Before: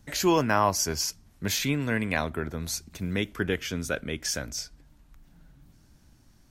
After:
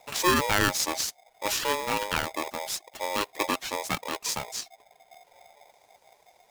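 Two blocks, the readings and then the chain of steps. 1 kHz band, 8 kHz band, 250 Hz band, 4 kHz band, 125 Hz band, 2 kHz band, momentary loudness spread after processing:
+2.0 dB, +0.5 dB, -5.5 dB, +2.0 dB, -7.5 dB, +1.5 dB, 10 LU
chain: reverb removal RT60 0.58 s; polarity switched at an audio rate 720 Hz

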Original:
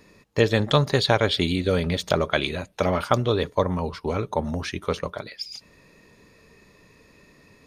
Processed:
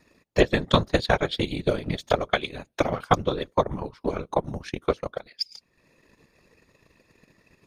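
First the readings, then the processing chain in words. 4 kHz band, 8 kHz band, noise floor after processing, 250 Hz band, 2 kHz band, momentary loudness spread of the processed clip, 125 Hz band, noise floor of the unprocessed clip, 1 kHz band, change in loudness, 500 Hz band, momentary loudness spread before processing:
-3.5 dB, -5.0 dB, -70 dBFS, -2.5 dB, -1.5 dB, 10 LU, -5.0 dB, -56 dBFS, 0.0 dB, -2.0 dB, -1.5 dB, 12 LU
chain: whisper effect; transient shaper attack +10 dB, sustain -8 dB; trim -7 dB

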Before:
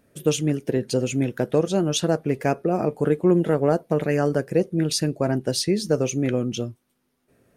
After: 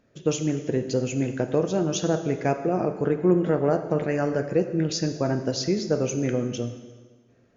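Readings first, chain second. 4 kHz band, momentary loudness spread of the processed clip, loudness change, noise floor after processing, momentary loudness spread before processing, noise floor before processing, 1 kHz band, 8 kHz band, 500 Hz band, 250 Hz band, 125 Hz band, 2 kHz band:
-5.0 dB, 5 LU, -2.0 dB, -59 dBFS, 5 LU, -72 dBFS, -1.5 dB, -3.5 dB, -2.0 dB, -2.0 dB, -2.5 dB, -2.5 dB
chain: dynamic bell 3.6 kHz, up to -6 dB, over -46 dBFS, Q 2.1; brick-wall FIR low-pass 7.2 kHz; plate-style reverb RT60 1.5 s, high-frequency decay 0.85×, DRR 7 dB; trim -2.5 dB

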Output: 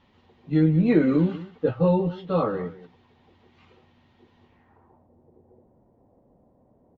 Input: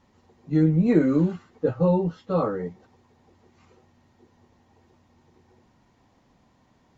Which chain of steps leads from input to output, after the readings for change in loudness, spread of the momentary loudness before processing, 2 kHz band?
0.0 dB, 9 LU, +3.0 dB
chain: low-pass sweep 3.3 kHz -> 560 Hz, 4.45–5.09 s; delay 186 ms -16.5 dB

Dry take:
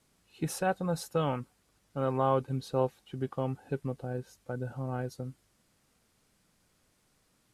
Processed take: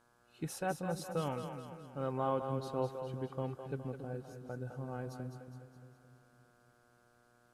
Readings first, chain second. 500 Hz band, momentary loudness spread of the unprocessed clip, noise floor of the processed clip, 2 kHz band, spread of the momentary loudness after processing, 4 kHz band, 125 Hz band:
-6.0 dB, 11 LU, -69 dBFS, -6.0 dB, 13 LU, -6.0 dB, -6.0 dB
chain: mains buzz 120 Hz, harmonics 14, -64 dBFS 0 dB/octave; two-band feedback delay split 390 Hz, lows 282 ms, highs 207 ms, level -7 dB; trim -7 dB

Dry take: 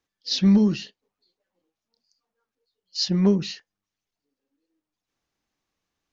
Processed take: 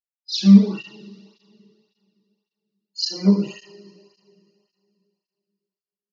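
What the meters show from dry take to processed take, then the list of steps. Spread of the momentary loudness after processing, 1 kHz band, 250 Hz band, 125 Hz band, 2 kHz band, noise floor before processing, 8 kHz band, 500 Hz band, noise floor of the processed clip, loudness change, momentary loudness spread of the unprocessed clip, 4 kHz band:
17 LU, -1.0 dB, +4.5 dB, +4.0 dB, 0.0 dB, under -85 dBFS, no reading, -1.5 dB, under -85 dBFS, +3.5 dB, 16 LU, +0.5 dB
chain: expander -38 dBFS; spectral noise reduction 24 dB; two-slope reverb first 0.58 s, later 2.7 s, from -21 dB, DRR -8 dB; cancelling through-zero flanger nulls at 1.8 Hz, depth 1.5 ms; trim -4.5 dB

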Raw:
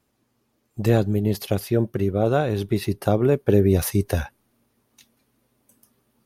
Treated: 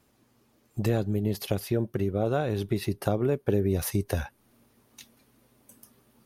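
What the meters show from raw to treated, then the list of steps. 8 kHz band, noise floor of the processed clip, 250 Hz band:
-4.5 dB, -67 dBFS, -6.5 dB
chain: compression 2:1, threshold -36 dBFS, peak gain reduction 13.5 dB; trim +4.5 dB

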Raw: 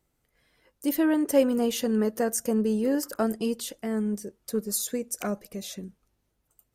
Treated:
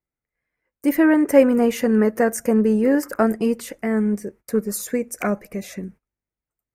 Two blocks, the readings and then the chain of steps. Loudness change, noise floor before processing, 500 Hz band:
+7.5 dB, -76 dBFS, +7.5 dB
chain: gate -50 dBFS, range -23 dB; resonant high shelf 2.7 kHz -7 dB, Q 3; trim +7.5 dB

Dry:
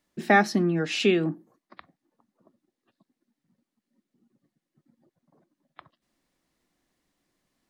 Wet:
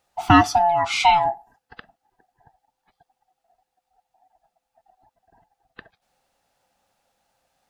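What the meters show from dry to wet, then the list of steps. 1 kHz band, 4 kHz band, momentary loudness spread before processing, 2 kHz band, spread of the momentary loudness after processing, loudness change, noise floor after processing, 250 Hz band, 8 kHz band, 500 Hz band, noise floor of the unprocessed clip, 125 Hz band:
+11.5 dB, +5.5 dB, 6 LU, +1.5 dB, 9 LU, +5.5 dB, -81 dBFS, +1.5 dB, +6.5 dB, +0.5 dB, under -85 dBFS, +3.5 dB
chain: split-band scrambler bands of 500 Hz; trim +5.5 dB

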